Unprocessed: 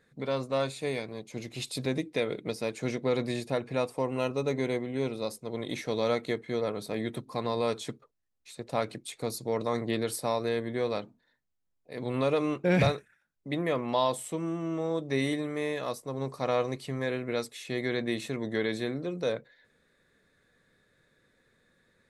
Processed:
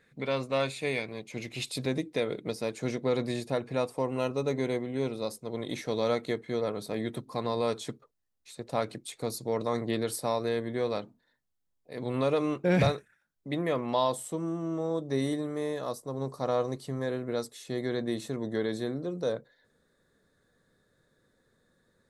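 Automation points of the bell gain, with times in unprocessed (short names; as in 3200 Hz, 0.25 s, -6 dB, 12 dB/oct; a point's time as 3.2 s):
bell 2400 Hz
1.51 s +7 dB
2 s -3 dB
13.95 s -3 dB
14.45 s -13 dB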